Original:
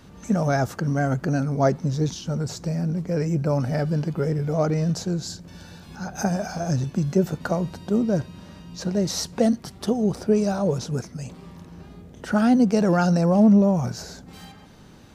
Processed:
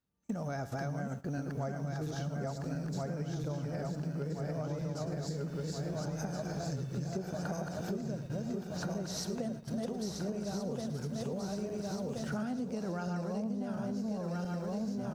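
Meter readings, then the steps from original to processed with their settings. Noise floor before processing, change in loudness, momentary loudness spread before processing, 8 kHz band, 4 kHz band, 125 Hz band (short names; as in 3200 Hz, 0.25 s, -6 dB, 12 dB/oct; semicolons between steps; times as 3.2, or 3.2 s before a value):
-46 dBFS, -14.5 dB, 18 LU, -11.0 dB, -11.0 dB, -12.0 dB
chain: regenerating reverse delay 0.688 s, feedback 69%, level -1.5 dB; on a send: feedback echo 0.108 s, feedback 33%, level -13.5 dB; on the sum: requantised 10-bit, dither triangular; compressor 10:1, threshold -28 dBFS, peak gain reduction 19 dB; gate -35 dBFS, range -34 dB; gain -5.5 dB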